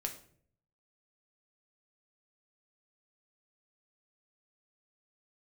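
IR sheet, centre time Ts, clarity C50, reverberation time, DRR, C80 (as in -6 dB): 13 ms, 11.0 dB, 0.55 s, 2.5 dB, 14.0 dB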